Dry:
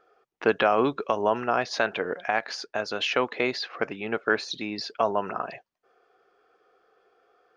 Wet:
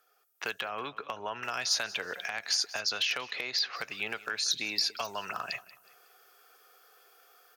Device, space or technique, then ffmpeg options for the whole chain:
FM broadcast chain: -filter_complex "[0:a]asettb=1/sr,asplit=3[link_01][link_02][link_03];[link_01]atrim=end=0.644[link_04];[link_02]atrim=start=0.64:end=1.43,asetpts=PTS-STARTPTS,afade=type=in:duration=0.004:curve=qsin,afade=type=out:start_time=0.786:duration=0.004:curve=qsin,lowpass=1800[link_05];[link_03]atrim=start=1.426[link_06];[link_04][link_05]acrossfade=duration=0.004:curve1=hsin:curve2=qsin[link_07];[link_07][link_06]acrossfade=duration=0.004:curve1=qsin:curve2=hsin,asettb=1/sr,asplit=3[link_08][link_09][link_10];[link_08]atrim=end=2.804[link_11];[link_09]atrim=start=2.8:end=3.76,asetpts=PTS-STARTPTS,afade=type=in:duration=0.004:curve=qsin,afade=type=out:start_time=0.956:duration=0.004:curve=qsin,lowpass=frequency=6100:width=0.5412,lowpass=frequency=6100:width=1.3066[link_12];[link_10]atrim=start=3.756[link_13];[link_11][link_12]acrossfade=duration=0.004:curve1=hsin:curve2=qsin[link_14];[link_14][link_13]acrossfade=duration=0.004:curve1=qsin:curve2=hsin,highpass=70,equalizer=frequency=270:width_type=o:width=2.5:gain=-13.5,dynaudnorm=framelen=360:gausssize=3:maxgain=10.5dB,acrossover=split=320|1800[link_15][link_16][link_17];[link_15]acompressor=threshold=-44dB:ratio=4[link_18];[link_16]acompressor=threshold=-33dB:ratio=4[link_19];[link_17]acompressor=threshold=-32dB:ratio=4[link_20];[link_18][link_19][link_20]amix=inputs=3:normalize=0,aemphasis=mode=production:type=50fm,alimiter=limit=-16dB:level=0:latency=1:release=171,asoftclip=type=hard:threshold=-18dB,lowpass=frequency=15000:width=0.5412,lowpass=frequency=15000:width=1.3066,aemphasis=mode=production:type=50fm,aecho=1:1:184|368|552:0.112|0.0404|0.0145,volume=-4.5dB"

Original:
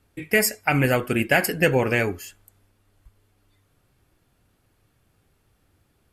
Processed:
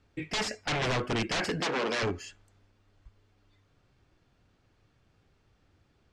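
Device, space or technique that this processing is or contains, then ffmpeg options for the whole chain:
synthesiser wavefolder: -filter_complex "[0:a]aeval=exprs='0.0841*(abs(mod(val(0)/0.0841+3,4)-2)-1)':channel_layout=same,lowpass=frequency=6400:width=0.5412,lowpass=frequency=6400:width=1.3066,asettb=1/sr,asplit=3[link_01][link_02][link_03];[link_01]atrim=end=1.604[link_04];[link_02]atrim=start=1.6:end=2.03,asetpts=PTS-STARTPTS,afade=type=in:duration=0.004:curve=qsin,afade=type=out:start_time=0.426:duration=0.004:curve=qsin,highpass=frequency=210:width=0.5412,highpass=frequency=210:width=1.3066[link_05];[link_03]atrim=start=2.026[link_06];[link_04][link_05]acrossfade=duration=0.004:curve1=hsin:curve2=qsin[link_07];[link_07][link_06]acrossfade=duration=0.004:curve1=qsin:curve2=hsin,volume=-2dB"

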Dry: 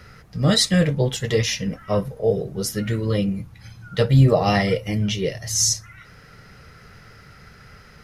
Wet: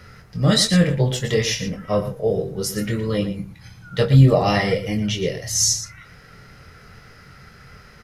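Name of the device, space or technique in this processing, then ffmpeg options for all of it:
slapback doubling: -filter_complex "[0:a]asplit=3[link_01][link_02][link_03];[link_02]adelay=23,volume=-7dB[link_04];[link_03]adelay=116,volume=-11dB[link_05];[link_01][link_04][link_05]amix=inputs=3:normalize=0"

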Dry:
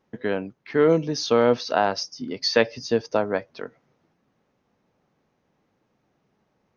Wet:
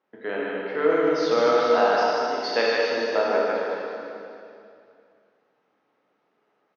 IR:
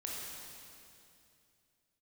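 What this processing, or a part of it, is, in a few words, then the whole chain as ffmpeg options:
station announcement: -filter_complex "[0:a]highpass=370,lowpass=3700,equalizer=frequency=1300:width_type=o:width=0.24:gain=4,aecho=1:1:151.6|262.4:0.631|0.282[link_01];[1:a]atrim=start_sample=2205[link_02];[link_01][link_02]afir=irnorm=-1:irlink=0"

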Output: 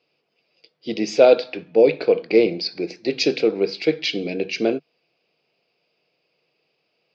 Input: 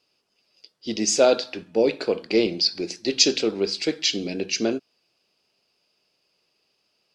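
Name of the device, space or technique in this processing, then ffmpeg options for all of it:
guitar cabinet: -filter_complex "[0:a]asettb=1/sr,asplit=3[link_01][link_02][link_03];[link_01]atrim=end=2.274[link_04];[link_02]atrim=start=2.27:end=3.72,asetpts=PTS-STARTPTS,afade=type=in:duration=0.004:curve=qsin,afade=type=out:start_time=1.446:duration=0.004:curve=qsin,equalizer=frequency=3200:width=2.9:gain=-5.5[link_05];[link_03]atrim=start=3.716[link_06];[link_04][link_05]acrossfade=duration=0.004:curve1=hsin:curve2=qsin[link_07];[link_07][link_06]acrossfade=duration=0.004:curve1=qsin:curve2=hsin,highpass=100,equalizer=frequency=150:width_type=q:width=4:gain=10,equalizer=frequency=320:width_type=q:width=4:gain=4,equalizer=frequency=480:width_type=q:width=4:gain=9,equalizer=frequency=700:width_type=q:width=4:gain=6,equalizer=frequency=2300:width_type=q:width=4:gain=8,lowpass=frequency=4600:width=0.5412,lowpass=frequency=4600:width=1.3066,volume=-1.5dB"

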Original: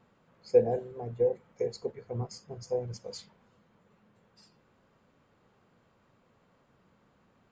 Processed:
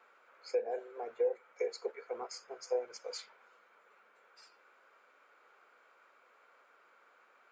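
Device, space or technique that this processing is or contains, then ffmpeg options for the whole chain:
laptop speaker: -af "highpass=frequency=420:width=0.5412,highpass=frequency=420:width=1.3066,equalizer=frequency=1400:width_type=o:width=0.51:gain=12,equalizer=frequency=2300:width_type=o:width=0.27:gain=9.5,alimiter=limit=-23.5dB:level=0:latency=1:release=485"

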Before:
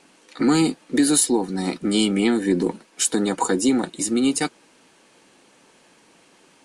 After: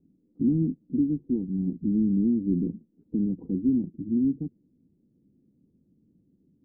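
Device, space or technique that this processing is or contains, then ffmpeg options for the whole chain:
the neighbour's flat through the wall: -af "lowpass=frequency=250:width=0.5412,lowpass=frequency=250:width=1.3066,equalizer=frequency=86:width_type=o:width=0.84:gain=6.5"

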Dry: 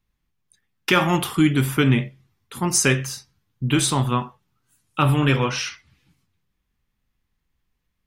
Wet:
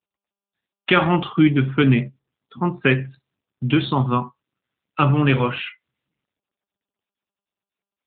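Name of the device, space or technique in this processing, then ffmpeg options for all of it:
mobile call with aggressive noise cancelling: -af "highpass=110,afftdn=noise_reduction=26:noise_floor=-33,volume=2.5dB" -ar 8000 -c:a libopencore_amrnb -b:a 10200

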